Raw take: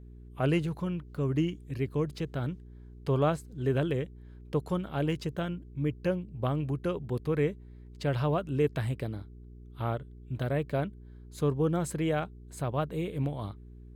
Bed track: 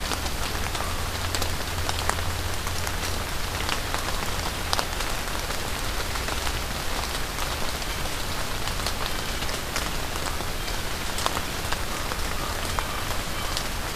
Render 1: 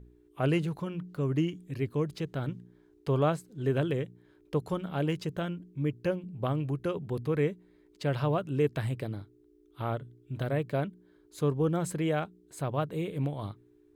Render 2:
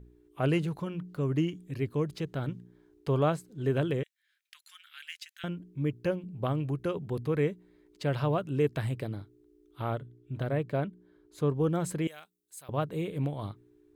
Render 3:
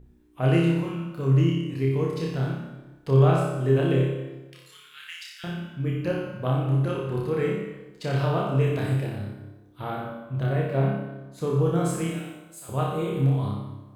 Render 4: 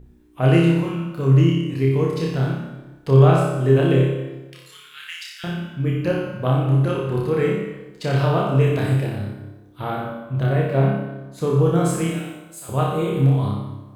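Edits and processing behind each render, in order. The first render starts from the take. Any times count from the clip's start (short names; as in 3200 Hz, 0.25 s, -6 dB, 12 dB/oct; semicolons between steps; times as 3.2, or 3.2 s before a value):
de-hum 60 Hz, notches 4
4.03–5.44 steep high-pass 1700 Hz; 10.02–11.54 high shelf 3500 Hz -6.5 dB; 12.07–12.69 pre-emphasis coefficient 0.97
flutter echo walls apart 5.1 m, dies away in 0.66 s; plate-style reverb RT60 1.1 s, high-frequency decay 0.8×, DRR 2 dB
gain +5.5 dB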